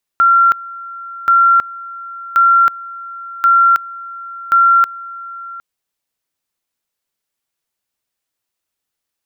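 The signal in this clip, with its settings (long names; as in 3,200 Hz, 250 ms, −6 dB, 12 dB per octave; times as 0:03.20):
tone at two levels in turn 1,370 Hz −6.5 dBFS, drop 20 dB, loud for 0.32 s, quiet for 0.76 s, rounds 5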